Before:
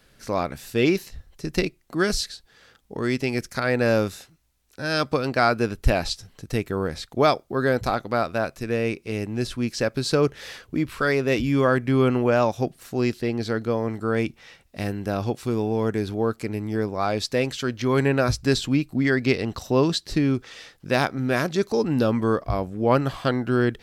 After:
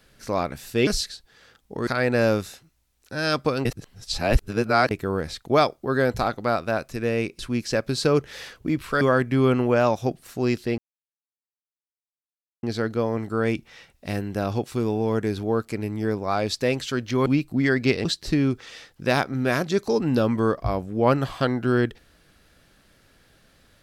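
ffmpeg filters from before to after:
-filter_complex "[0:a]asplit=10[s0][s1][s2][s3][s4][s5][s6][s7][s8][s9];[s0]atrim=end=0.872[s10];[s1]atrim=start=2.068:end=3.072[s11];[s2]atrim=start=3.538:end=5.322[s12];[s3]atrim=start=5.318:end=6.582,asetpts=PTS-STARTPTS,areverse[s13];[s4]atrim=start=6.578:end=9.062[s14];[s5]atrim=start=9.468:end=11.092[s15];[s6]atrim=start=11.568:end=13.34,asetpts=PTS-STARTPTS,afade=t=out:st=1.768:d=0.004:c=hsin,apad=pad_dur=1.85[s16];[s7]atrim=start=13.34:end=17.972,asetpts=PTS-STARTPTS,afade=t=in:d=0.004:c=hsin[s17];[s8]atrim=start=18.668:end=19.462[s18];[s9]atrim=start=19.888[s19];[s10][s11]acrossfade=d=0.004:c1=hsin:c2=hsin[s20];[s20][s12]acrossfade=d=0.004:c1=hsin:c2=hsin[s21];[s21][s13]acrossfade=d=0.004:c1=hsin:c2=hsin[s22];[s22][s14]acrossfade=d=0.004:c1=hsin:c2=hsin[s23];[s23][s15]acrossfade=d=0.004:c1=hsin:c2=hsin[s24];[s16][s17]concat=n=2:v=0:a=1[s25];[s24][s25]acrossfade=d=0.004:c1=hsin:c2=hsin[s26];[s26][s18]acrossfade=d=0.004:c1=hsin:c2=hsin[s27];[s27][s19]acrossfade=d=0.004:c1=hsin:c2=hsin"

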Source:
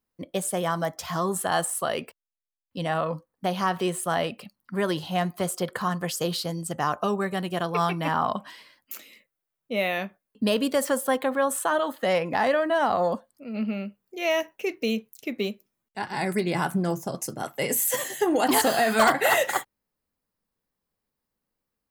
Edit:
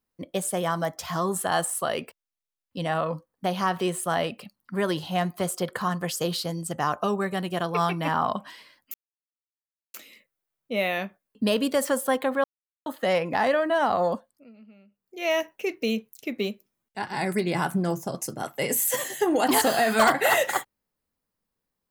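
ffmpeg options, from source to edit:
-filter_complex "[0:a]asplit=6[s0][s1][s2][s3][s4][s5];[s0]atrim=end=8.94,asetpts=PTS-STARTPTS,afade=t=out:st=8.936:d=0.004:c=hsin,apad=pad_dur=1[s6];[s1]atrim=start=8.94:end=11.44,asetpts=PTS-STARTPTS,afade=t=in:d=0.004:c=hsin,afade=t=out:st=2.496:d=0.004:c=hsin[s7];[s2]atrim=start=11.44:end=11.86,asetpts=PTS-STARTPTS,volume=0[s8];[s3]atrim=start=11.86:end=13.56,asetpts=PTS-STARTPTS,afade=t=in:d=0.004:c=hsin,afade=t=out:st=1.26:d=0.44:silence=0.0707946[s9];[s4]atrim=start=13.56:end=13.88,asetpts=PTS-STARTPTS,volume=0.0708[s10];[s5]atrim=start=13.88,asetpts=PTS-STARTPTS,afade=t=in:d=0.44:silence=0.0707946[s11];[s6][s7][s8][s9][s10][s11]concat=n=6:v=0:a=1"

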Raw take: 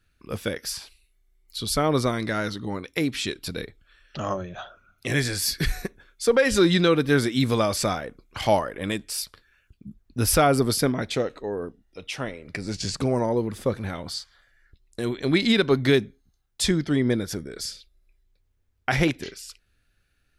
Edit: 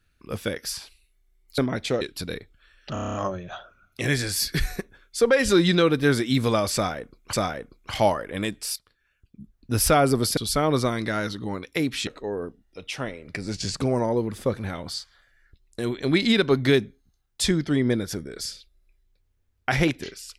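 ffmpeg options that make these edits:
-filter_complex "[0:a]asplit=14[s0][s1][s2][s3][s4][s5][s6][s7][s8][s9][s10][s11][s12][s13];[s0]atrim=end=1.582[s14];[s1]atrim=start=10.838:end=11.272[s15];[s2]atrim=start=3.278:end=4.232[s16];[s3]atrim=start=4.198:end=4.232[s17];[s4]atrim=start=4.198:end=4.232[s18];[s5]atrim=start=4.198:end=4.232[s19];[s6]atrim=start=4.198:end=4.232[s20];[s7]atrim=start=4.198:end=4.232[s21];[s8]atrim=start=4.198:end=4.232[s22];[s9]atrim=start=4.198:end=8.392[s23];[s10]atrim=start=7.798:end=9.23,asetpts=PTS-STARTPTS,afade=t=out:st=1.428:d=0.004:c=hsin:silence=0.158489[s24];[s11]atrim=start=9.23:end=10.842,asetpts=PTS-STARTPTS,afade=t=in:d=1.01:silence=0.158489[s25];[s12]atrim=start=1.578:end=3.282[s26];[s13]atrim=start=11.268[s27];[s14][s15]acrossfade=d=0.004:c1=hsin:c2=hsin[s28];[s28][s16]acrossfade=d=0.004:c1=hsin:c2=hsin[s29];[s29][s17]acrossfade=d=0.004:c1=hsin:c2=hsin[s30];[s30][s18]acrossfade=d=0.004:c1=hsin:c2=hsin[s31];[s31][s19]acrossfade=d=0.004:c1=hsin:c2=hsin[s32];[s32][s20]acrossfade=d=0.004:c1=hsin:c2=hsin[s33];[s33][s21]acrossfade=d=0.004:c1=hsin:c2=hsin[s34];[s34][s22]acrossfade=d=0.004:c1=hsin:c2=hsin[s35];[s35][s23]acrossfade=d=0.004:c1=hsin:c2=hsin[s36];[s24][s25]concat=n=2:v=0:a=1[s37];[s36][s37]acrossfade=d=0.004:c1=hsin:c2=hsin[s38];[s38][s26]acrossfade=d=0.004:c1=hsin:c2=hsin[s39];[s39][s27]acrossfade=d=0.004:c1=hsin:c2=hsin"

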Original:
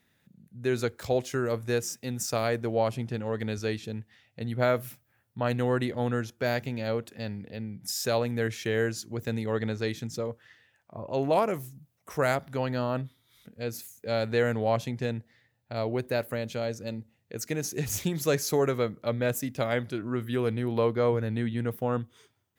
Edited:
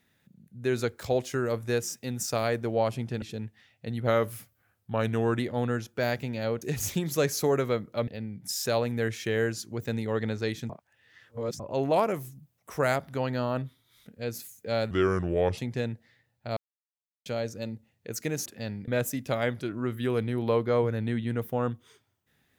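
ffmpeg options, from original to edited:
-filter_complex "[0:a]asplit=14[s0][s1][s2][s3][s4][s5][s6][s7][s8][s9][s10][s11][s12][s13];[s0]atrim=end=3.222[s14];[s1]atrim=start=3.758:end=4.614[s15];[s2]atrim=start=4.61:end=5.83,asetpts=PTS-STARTPTS,asetrate=40572,aresample=44100,atrim=end_sample=58480,asetpts=PTS-STARTPTS[s16];[s3]atrim=start=5.826:end=7.052[s17];[s4]atrim=start=17.708:end=19.172[s18];[s5]atrim=start=7.468:end=10.092[s19];[s6]atrim=start=10.088:end=10.992,asetpts=PTS-STARTPTS,areverse[s20];[s7]atrim=start=10.988:end=14.304[s21];[s8]atrim=start=14.3:end=14.83,asetpts=PTS-STARTPTS,asetrate=34839,aresample=44100,atrim=end_sample=29586,asetpts=PTS-STARTPTS[s22];[s9]atrim=start=14.826:end=15.82,asetpts=PTS-STARTPTS,afade=t=out:st=0.99:d=0.004:c=hsin[s23];[s10]atrim=start=15.82:end=16.51,asetpts=PTS-STARTPTS,volume=0[s24];[s11]atrim=start=16.51:end=17.712,asetpts=PTS-STARTPTS,afade=t=in:d=0.004:c=hsin[s25];[s12]atrim=start=7.048:end=7.472[s26];[s13]atrim=start=19.168[s27];[s14][s15]acrossfade=d=0.004:c1=hsin:c2=hsin[s28];[s28][s16]acrossfade=d=0.004:c1=hsin:c2=hsin[s29];[s29][s17]acrossfade=d=0.004:c1=hsin:c2=hsin[s30];[s30][s18]acrossfade=d=0.004:c1=hsin:c2=hsin[s31];[s31][s19]acrossfade=d=0.004:c1=hsin:c2=hsin[s32];[s32][s20]acrossfade=d=0.004:c1=hsin:c2=hsin[s33];[s33][s21]acrossfade=d=0.004:c1=hsin:c2=hsin[s34];[s34][s22]acrossfade=d=0.004:c1=hsin:c2=hsin[s35];[s23][s24][s25]concat=n=3:v=0:a=1[s36];[s35][s36]acrossfade=d=0.004:c1=hsin:c2=hsin[s37];[s37][s26]acrossfade=d=0.004:c1=hsin:c2=hsin[s38];[s38][s27]acrossfade=d=0.004:c1=hsin:c2=hsin"

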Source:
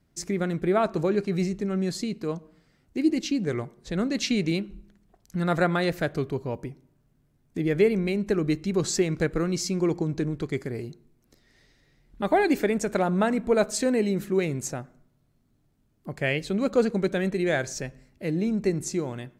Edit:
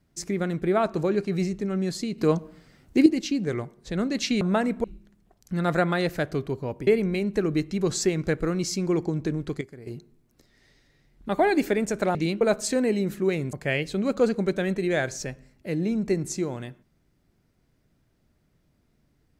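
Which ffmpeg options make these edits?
-filter_complex "[0:a]asplit=11[s0][s1][s2][s3][s4][s5][s6][s7][s8][s9][s10];[s0]atrim=end=2.182[s11];[s1]atrim=start=2.178:end=3.062,asetpts=PTS-STARTPTS,volume=2.66[s12];[s2]atrim=start=3.058:end=4.412[s13];[s3]atrim=start=13.078:end=13.512[s14];[s4]atrim=start=4.668:end=6.702[s15];[s5]atrim=start=7.798:end=10.542[s16];[s6]atrim=start=10.538:end=10.802,asetpts=PTS-STARTPTS,volume=0.266[s17];[s7]atrim=start=10.798:end=13.082[s18];[s8]atrim=start=4.408:end=4.672[s19];[s9]atrim=start=13.508:end=14.632[s20];[s10]atrim=start=16.088[s21];[s11][s12]acrossfade=d=0.004:c1=hsin:c2=hsin[s22];[s22][s13]acrossfade=d=0.004:c1=hsin:c2=hsin[s23];[s23][s14]acrossfade=d=0.004:c1=hsin:c2=hsin[s24];[s24][s15]acrossfade=d=0.004:c1=hsin:c2=hsin[s25];[s25][s16]acrossfade=d=0.004:c1=hsin:c2=hsin[s26];[s26][s17]acrossfade=d=0.004:c1=hsin:c2=hsin[s27];[s27][s18]acrossfade=d=0.004:c1=hsin:c2=hsin[s28];[s28][s19]acrossfade=d=0.004:c1=hsin:c2=hsin[s29];[s29][s20]acrossfade=d=0.004:c1=hsin:c2=hsin[s30];[s30][s21]acrossfade=d=0.004:c1=hsin:c2=hsin"

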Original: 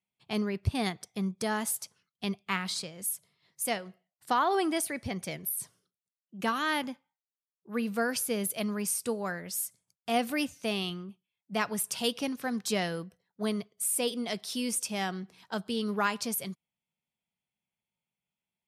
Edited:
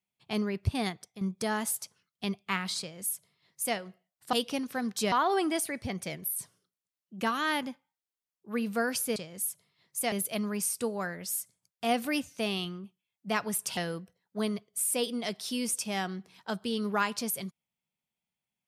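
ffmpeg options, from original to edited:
-filter_complex "[0:a]asplit=7[s0][s1][s2][s3][s4][s5][s6];[s0]atrim=end=1.21,asetpts=PTS-STARTPTS,afade=t=out:st=0.65:d=0.56:c=qsin:silence=0.266073[s7];[s1]atrim=start=1.21:end=4.332,asetpts=PTS-STARTPTS,afade=t=in:d=0.004:c=hsin:silence=0.266073[s8];[s2]atrim=start=12.018:end=12.812[s9];[s3]atrim=start=4.328:end=8.372[s10];[s4]atrim=start=2.798:end=3.762[s11];[s5]atrim=start=8.368:end=12.022[s12];[s6]atrim=start=12.808[s13];[s7][s8]concat=n=2:v=0:a=1[s14];[s14][s9]acrossfade=d=0.004:c1=hsin:c2=hsin[s15];[s15][s10]acrossfade=d=0.004:c1=hsin:c2=hsin[s16];[s16][s11]acrossfade=d=0.004:c1=hsin:c2=hsin[s17];[s17][s12]acrossfade=d=0.004:c1=hsin:c2=hsin[s18];[s18][s13]acrossfade=d=0.004:c1=hsin:c2=hsin"

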